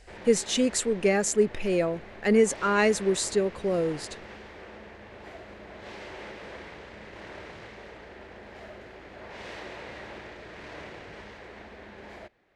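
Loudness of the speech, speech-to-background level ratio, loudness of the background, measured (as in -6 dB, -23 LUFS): -25.0 LUFS, 18.5 dB, -43.5 LUFS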